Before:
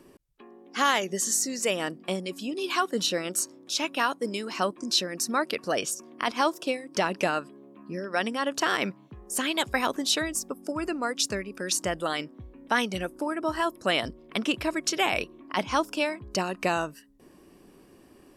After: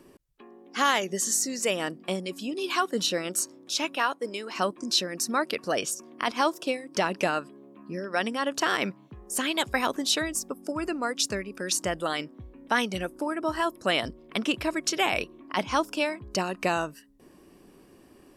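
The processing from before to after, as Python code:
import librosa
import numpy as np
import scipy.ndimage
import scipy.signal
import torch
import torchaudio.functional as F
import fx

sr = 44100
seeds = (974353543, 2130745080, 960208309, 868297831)

y = fx.bass_treble(x, sr, bass_db=-12, treble_db=-5, at=(3.96, 4.56))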